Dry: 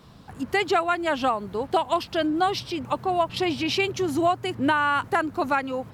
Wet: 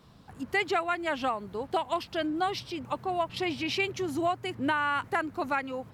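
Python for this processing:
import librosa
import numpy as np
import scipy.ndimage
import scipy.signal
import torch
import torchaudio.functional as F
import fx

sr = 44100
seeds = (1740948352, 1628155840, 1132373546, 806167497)

y = fx.dynamic_eq(x, sr, hz=2100.0, q=2.5, threshold_db=-40.0, ratio=4.0, max_db=5)
y = F.gain(torch.from_numpy(y), -6.5).numpy()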